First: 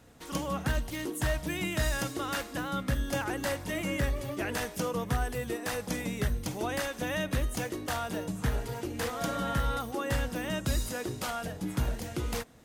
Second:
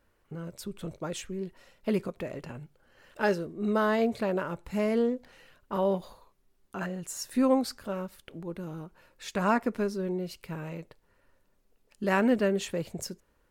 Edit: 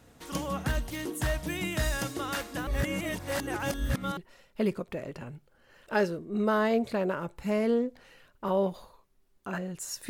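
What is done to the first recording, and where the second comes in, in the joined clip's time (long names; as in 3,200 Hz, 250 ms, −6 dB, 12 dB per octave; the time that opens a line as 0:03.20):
first
0:02.67–0:04.17: reverse
0:04.17: continue with second from 0:01.45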